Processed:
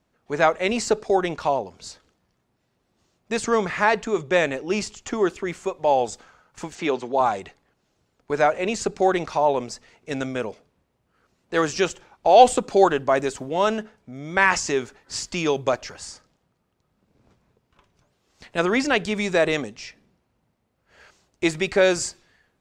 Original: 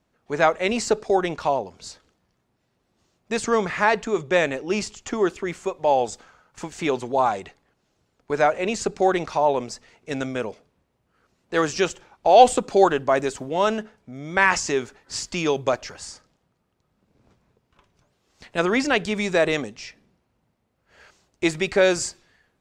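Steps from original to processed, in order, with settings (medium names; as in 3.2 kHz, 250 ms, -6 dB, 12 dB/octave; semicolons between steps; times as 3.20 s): 6.75–7.21 s: three-band isolator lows -13 dB, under 160 Hz, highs -22 dB, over 7.2 kHz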